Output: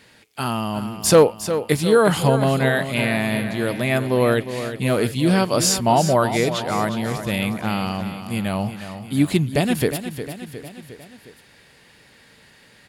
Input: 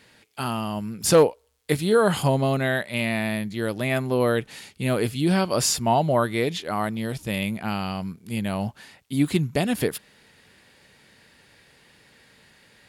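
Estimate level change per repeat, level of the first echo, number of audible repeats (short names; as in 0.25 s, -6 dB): -5.0 dB, -10.5 dB, 4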